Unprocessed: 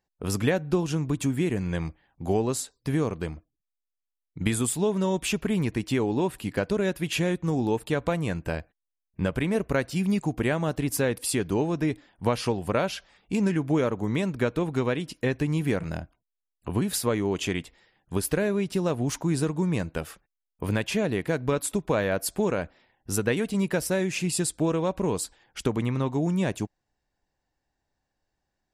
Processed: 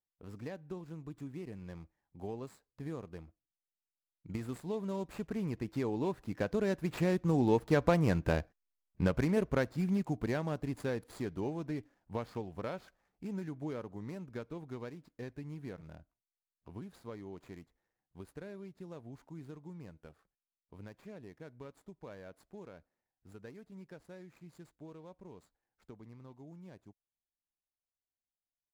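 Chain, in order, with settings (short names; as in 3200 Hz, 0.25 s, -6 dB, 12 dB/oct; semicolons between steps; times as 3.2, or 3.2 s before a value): median filter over 15 samples; Doppler pass-by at 8.18, 9 m/s, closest 8 m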